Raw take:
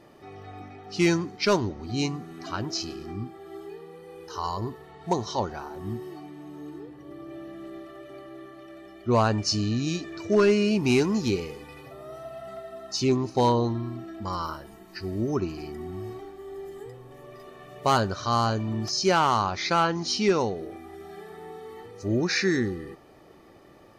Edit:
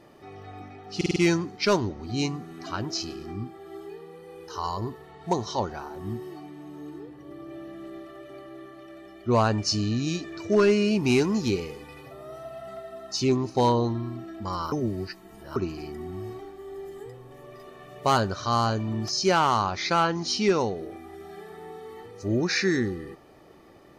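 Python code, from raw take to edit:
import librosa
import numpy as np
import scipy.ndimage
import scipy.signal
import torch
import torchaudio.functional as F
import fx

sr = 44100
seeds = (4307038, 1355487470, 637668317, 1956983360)

y = fx.edit(x, sr, fx.stutter(start_s=0.96, slice_s=0.05, count=5),
    fx.reverse_span(start_s=14.52, length_s=0.84), tone=tone)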